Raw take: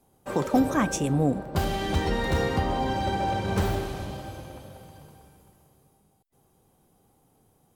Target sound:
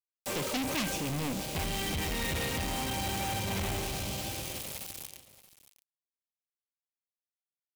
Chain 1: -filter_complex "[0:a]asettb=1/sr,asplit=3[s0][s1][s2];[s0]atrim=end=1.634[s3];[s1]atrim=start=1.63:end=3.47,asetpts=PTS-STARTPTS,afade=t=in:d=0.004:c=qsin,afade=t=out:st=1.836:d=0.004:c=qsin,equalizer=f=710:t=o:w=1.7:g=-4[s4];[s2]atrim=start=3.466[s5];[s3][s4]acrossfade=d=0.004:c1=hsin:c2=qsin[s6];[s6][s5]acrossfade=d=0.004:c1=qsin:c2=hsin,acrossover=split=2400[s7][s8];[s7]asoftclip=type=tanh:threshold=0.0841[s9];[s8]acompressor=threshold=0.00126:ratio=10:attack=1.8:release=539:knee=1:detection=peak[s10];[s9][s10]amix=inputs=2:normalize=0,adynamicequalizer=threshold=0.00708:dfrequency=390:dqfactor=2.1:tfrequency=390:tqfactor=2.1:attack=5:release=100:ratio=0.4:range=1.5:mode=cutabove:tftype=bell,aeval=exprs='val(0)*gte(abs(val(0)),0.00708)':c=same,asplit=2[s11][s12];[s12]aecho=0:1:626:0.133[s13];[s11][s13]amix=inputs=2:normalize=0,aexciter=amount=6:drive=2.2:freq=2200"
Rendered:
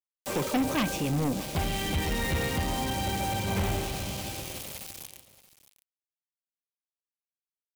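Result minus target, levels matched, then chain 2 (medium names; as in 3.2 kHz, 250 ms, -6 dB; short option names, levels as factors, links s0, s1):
saturation: distortion -7 dB
-filter_complex "[0:a]asettb=1/sr,asplit=3[s0][s1][s2];[s0]atrim=end=1.634[s3];[s1]atrim=start=1.63:end=3.47,asetpts=PTS-STARTPTS,afade=t=in:d=0.004:c=qsin,afade=t=out:st=1.836:d=0.004:c=qsin,equalizer=f=710:t=o:w=1.7:g=-4[s4];[s2]atrim=start=3.466[s5];[s3][s4]acrossfade=d=0.004:c1=hsin:c2=qsin[s6];[s6][s5]acrossfade=d=0.004:c1=qsin:c2=hsin,acrossover=split=2400[s7][s8];[s7]asoftclip=type=tanh:threshold=0.0282[s9];[s8]acompressor=threshold=0.00126:ratio=10:attack=1.8:release=539:knee=1:detection=peak[s10];[s9][s10]amix=inputs=2:normalize=0,adynamicequalizer=threshold=0.00708:dfrequency=390:dqfactor=2.1:tfrequency=390:tqfactor=2.1:attack=5:release=100:ratio=0.4:range=1.5:mode=cutabove:tftype=bell,aeval=exprs='val(0)*gte(abs(val(0)),0.00708)':c=same,asplit=2[s11][s12];[s12]aecho=0:1:626:0.133[s13];[s11][s13]amix=inputs=2:normalize=0,aexciter=amount=6:drive=2.2:freq=2200"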